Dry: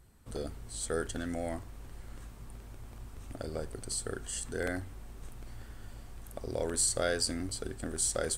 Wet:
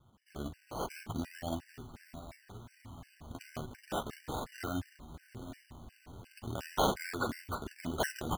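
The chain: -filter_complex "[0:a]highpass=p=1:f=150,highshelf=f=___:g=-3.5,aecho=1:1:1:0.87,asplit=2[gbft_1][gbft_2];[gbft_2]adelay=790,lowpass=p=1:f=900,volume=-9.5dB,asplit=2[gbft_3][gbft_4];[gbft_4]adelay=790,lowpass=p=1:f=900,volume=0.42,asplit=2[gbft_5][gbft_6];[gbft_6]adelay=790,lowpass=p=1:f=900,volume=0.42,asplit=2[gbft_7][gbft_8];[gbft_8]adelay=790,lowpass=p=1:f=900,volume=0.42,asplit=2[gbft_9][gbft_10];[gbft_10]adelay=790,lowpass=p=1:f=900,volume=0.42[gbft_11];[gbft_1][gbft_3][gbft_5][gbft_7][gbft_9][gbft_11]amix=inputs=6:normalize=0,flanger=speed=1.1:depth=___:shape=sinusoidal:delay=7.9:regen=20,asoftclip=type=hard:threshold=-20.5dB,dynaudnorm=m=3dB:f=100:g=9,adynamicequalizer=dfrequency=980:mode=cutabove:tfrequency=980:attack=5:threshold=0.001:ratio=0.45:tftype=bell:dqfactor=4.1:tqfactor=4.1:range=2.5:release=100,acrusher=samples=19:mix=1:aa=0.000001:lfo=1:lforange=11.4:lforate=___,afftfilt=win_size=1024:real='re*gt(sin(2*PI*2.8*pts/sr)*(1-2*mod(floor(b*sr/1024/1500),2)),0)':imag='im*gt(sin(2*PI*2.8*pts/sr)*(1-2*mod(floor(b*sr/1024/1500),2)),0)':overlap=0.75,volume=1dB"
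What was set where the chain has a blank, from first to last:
9900, 6, 0.37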